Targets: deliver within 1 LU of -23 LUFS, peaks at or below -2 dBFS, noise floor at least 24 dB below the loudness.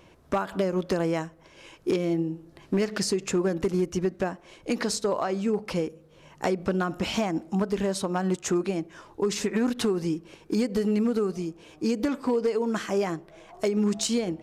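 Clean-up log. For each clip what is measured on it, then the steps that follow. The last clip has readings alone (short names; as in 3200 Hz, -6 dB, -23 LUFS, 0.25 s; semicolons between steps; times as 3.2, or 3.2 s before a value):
clipped 0.8%; flat tops at -18.0 dBFS; loudness -28.0 LUFS; peak -18.0 dBFS; loudness target -23.0 LUFS
-> clip repair -18 dBFS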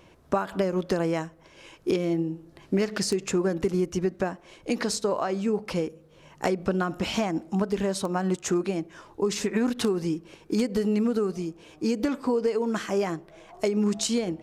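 clipped 0.0%; loudness -27.5 LUFS; peak -10.0 dBFS; loudness target -23.0 LUFS
-> gain +4.5 dB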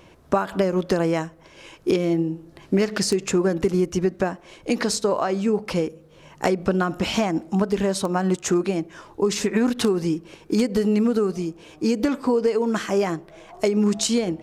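loudness -23.0 LUFS; peak -5.5 dBFS; noise floor -51 dBFS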